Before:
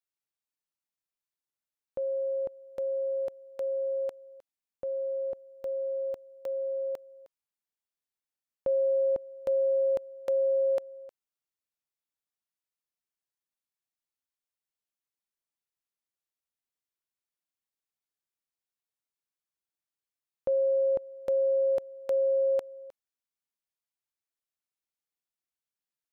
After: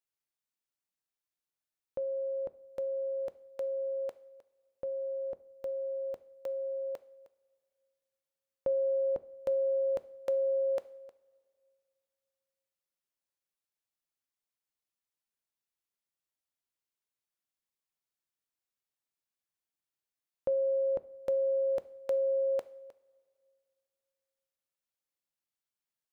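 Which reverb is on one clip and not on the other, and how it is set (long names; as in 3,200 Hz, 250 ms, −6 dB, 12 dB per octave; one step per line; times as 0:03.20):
coupled-rooms reverb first 0.54 s, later 2.5 s, from −18 dB, DRR 14 dB
level −1.5 dB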